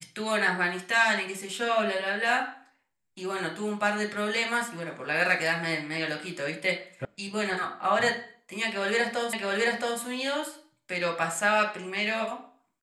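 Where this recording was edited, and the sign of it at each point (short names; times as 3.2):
7.05 sound cut off
9.33 repeat of the last 0.67 s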